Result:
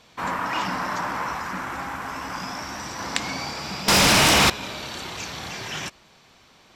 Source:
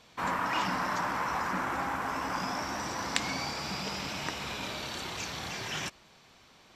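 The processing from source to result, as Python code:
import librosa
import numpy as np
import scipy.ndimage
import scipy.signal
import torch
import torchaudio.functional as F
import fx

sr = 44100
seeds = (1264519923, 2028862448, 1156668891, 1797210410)

y = fx.peak_eq(x, sr, hz=510.0, db=-4.5, octaves=2.8, at=(1.33, 3.0))
y = fx.fold_sine(y, sr, drive_db=18, ceiling_db=-17.0, at=(3.88, 4.5))
y = y * librosa.db_to_amplitude(4.0)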